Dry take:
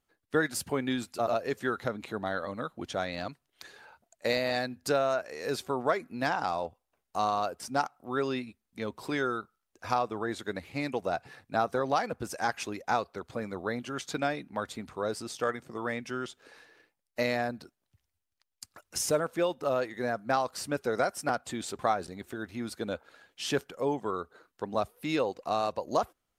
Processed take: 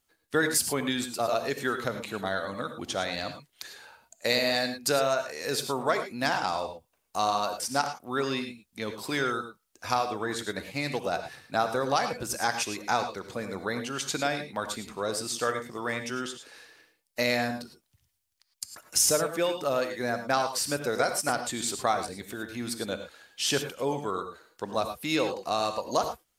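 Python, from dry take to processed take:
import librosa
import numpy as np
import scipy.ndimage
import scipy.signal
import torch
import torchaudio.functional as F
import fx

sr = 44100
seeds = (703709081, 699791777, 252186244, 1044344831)

y = fx.high_shelf(x, sr, hz=2700.0, db=10.5)
y = fx.rev_gated(y, sr, seeds[0], gate_ms=130, shape='rising', drr_db=7.5)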